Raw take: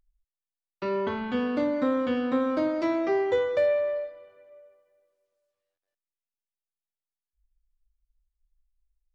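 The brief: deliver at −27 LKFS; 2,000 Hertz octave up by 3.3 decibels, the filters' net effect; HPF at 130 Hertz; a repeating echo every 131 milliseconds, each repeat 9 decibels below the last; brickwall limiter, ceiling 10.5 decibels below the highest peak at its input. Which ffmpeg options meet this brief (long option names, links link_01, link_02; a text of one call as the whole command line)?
ffmpeg -i in.wav -af "highpass=130,equalizer=frequency=2000:width_type=o:gain=4,alimiter=level_in=0.5dB:limit=-24dB:level=0:latency=1,volume=-0.5dB,aecho=1:1:131|262|393|524:0.355|0.124|0.0435|0.0152,volume=4dB" out.wav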